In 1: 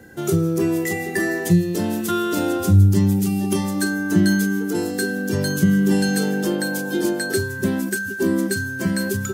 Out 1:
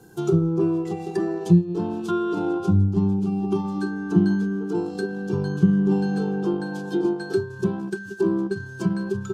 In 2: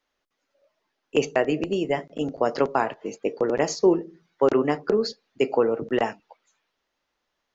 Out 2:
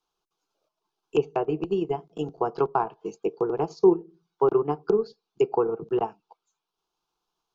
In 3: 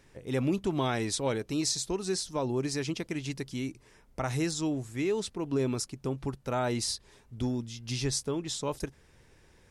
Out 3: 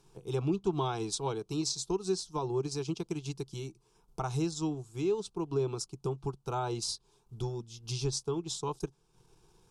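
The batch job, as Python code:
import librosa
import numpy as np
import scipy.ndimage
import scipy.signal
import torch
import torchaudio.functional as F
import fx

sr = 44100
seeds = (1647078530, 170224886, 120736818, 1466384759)

y = fx.transient(x, sr, attack_db=2, sustain_db=-7)
y = fx.env_lowpass_down(y, sr, base_hz=2000.0, full_db=-18.5)
y = fx.fixed_phaser(y, sr, hz=380.0, stages=8)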